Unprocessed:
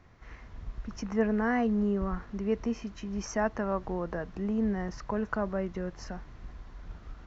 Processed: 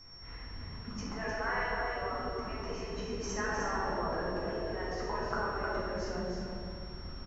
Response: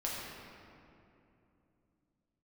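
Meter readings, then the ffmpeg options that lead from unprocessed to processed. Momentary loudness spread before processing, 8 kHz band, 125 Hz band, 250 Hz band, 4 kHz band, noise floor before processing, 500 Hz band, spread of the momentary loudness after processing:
21 LU, n/a, -4.0 dB, -11.0 dB, +7.0 dB, -51 dBFS, -3.5 dB, 11 LU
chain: -filter_complex "[0:a]aecho=1:1:307:0.531,aeval=exprs='val(0)+0.00398*sin(2*PI*5500*n/s)':c=same[a];[1:a]atrim=start_sample=2205,asetrate=70560,aresample=44100[b];[a][b]afir=irnorm=-1:irlink=0,afftfilt=real='re*lt(hypot(re,im),0.141)':imag='im*lt(hypot(re,im),0.141)':win_size=1024:overlap=0.75,volume=1.5dB"

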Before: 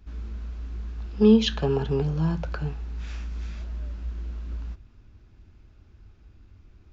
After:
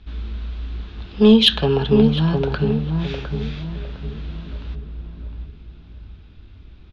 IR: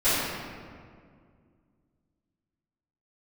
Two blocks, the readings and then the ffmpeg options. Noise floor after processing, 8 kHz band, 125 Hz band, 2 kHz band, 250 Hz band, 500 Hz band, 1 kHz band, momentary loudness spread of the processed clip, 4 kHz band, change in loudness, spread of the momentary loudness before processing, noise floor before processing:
-44 dBFS, n/a, +7.0 dB, +9.0 dB, +7.0 dB, +6.5 dB, +7.5 dB, 22 LU, +14.0 dB, +8.5 dB, 18 LU, -55 dBFS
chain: -filter_complex "[0:a]lowpass=f=3.6k:t=q:w=3.5,acontrast=53,asplit=2[a][b];[b]adelay=707,lowpass=f=800:p=1,volume=-3.5dB,asplit=2[c][d];[d]adelay=707,lowpass=f=800:p=1,volume=0.4,asplit=2[e][f];[f]adelay=707,lowpass=f=800:p=1,volume=0.4,asplit=2[g][h];[h]adelay=707,lowpass=f=800:p=1,volume=0.4,asplit=2[i][j];[j]adelay=707,lowpass=f=800:p=1,volume=0.4[k];[a][c][e][g][i][k]amix=inputs=6:normalize=0"

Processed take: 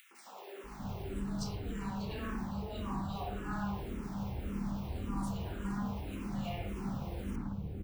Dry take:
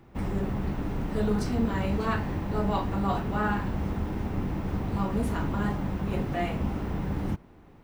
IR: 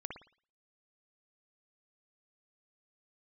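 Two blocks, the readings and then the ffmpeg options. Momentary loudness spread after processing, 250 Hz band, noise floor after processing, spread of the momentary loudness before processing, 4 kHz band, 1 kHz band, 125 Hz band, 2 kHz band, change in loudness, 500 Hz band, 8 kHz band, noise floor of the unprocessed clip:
4 LU, -9.0 dB, -50 dBFS, 4 LU, -5.5 dB, -10.5 dB, -9.5 dB, -11.5 dB, -9.5 dB, -12.5 dB, n/a, -53 dBFS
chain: -filter_complex "[0:a]areverse,acompressor=threshold=-34dB:ratio=6,areverse,highshelf=f=3.1k:g=10.5,aeval=exprs='val(0)+0.00501*(sin(2*PI*50*n/s)+sin(2*PI*2*50*n/s)/2+sin(2*PI*3*50*n/s)/3+sin(2*PI*4*50*n/s)/4+sin(2*PI*5*50*n/s)/5)':c=same,equalizer=f=1.9k:w=5.4:g=-4.5,acrossover=split=440|1800[a][b][c];[b]adelay=110[d];[a]adelay=640[e];[e][d][c]amix=inputs=3:normalize=0[f];[1:a]atrim=start_sample=2205[g];[f][g]afir=irnorm=-1:irlink=0,acompressor=mode=upward:threshold=-53dB:ratio=2.5,asplit=2[h][i];[i]afreqshift=-1.8[j];[h][j]amix=inputs=2:normalize=1,volume=3.5dB"

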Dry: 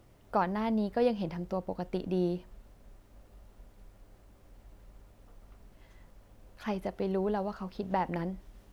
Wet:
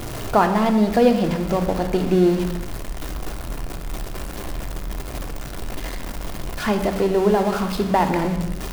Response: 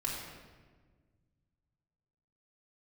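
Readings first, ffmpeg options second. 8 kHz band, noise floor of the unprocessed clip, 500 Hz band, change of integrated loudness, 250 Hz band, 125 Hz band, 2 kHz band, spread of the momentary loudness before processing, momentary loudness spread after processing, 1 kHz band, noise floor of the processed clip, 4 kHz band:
n/a, -60 dBFS, +13.0 dB, +11.5 dB, +13.5 dB, +14.0 dB, +15.5 dB, 9 LU, 15 LU, +13.0 dB, -31 dBFS, +17.5 dB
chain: -filter_complex "[0:a]aeval=exprs='val(0)+0.5*0.015*sgn(val(0))':c=same,bandreject=f=50:t=h:w=6,bandreject=f=100:t=h:w=6,asplit=2[a][b];[1:a]atrim=start_sample=2205,afade=t=out:st=0.37:d=0.01,atrim=end_sample=16758[c];[b][c]afir=irnorm=-1:irlink=0,volume=-4.5dB[d];[a][d]amix=inputs=2:normalize=0,volume=7.5dB"

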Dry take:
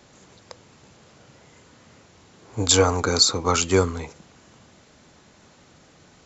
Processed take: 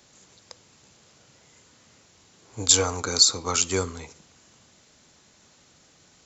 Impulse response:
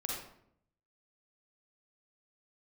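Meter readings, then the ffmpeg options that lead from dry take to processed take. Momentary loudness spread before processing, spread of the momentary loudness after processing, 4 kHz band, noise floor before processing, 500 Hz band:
12 LU, 10 LU, -0.5 dB, -54 dBFS, -7.5 dB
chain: -filter_complex "[0:a]highshelf=f=3.2k:g=12,asplit=2[a][b];[1:a]atrim=start_sample=2205[c];[b][c]afir=irnorm=-1:irlink=0,volume=-22.5dB[d];[a][d]amix=inputs=2:normalize=0,volume=-8.5dB"

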